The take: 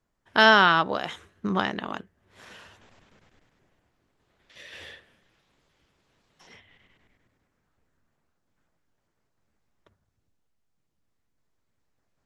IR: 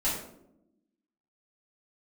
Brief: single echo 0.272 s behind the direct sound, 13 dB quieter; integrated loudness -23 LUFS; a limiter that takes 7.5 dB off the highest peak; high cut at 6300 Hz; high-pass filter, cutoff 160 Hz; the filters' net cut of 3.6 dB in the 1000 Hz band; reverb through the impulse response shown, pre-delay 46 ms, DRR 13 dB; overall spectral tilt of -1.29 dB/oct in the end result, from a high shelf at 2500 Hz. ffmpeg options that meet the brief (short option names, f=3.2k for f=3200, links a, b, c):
-filter_complex "[0:a]highpass=160,lowpass=6.3k,equalizer=f=1k:t=o:g=-5.5,highshelf=f=2.5k:g=4,alimiter=limit=-10.5dB:level=0:latency=1,aecho=1:1:272:0.224,asplit=2[a][b];[1:a]atrim=start_sample=2205,adelay=46[c];[b][c]afir=irnorm=-1:irlink=0,volume=-21.5dB[d];[a][d]amix=inputs=2:normalize=0,volume=5dB"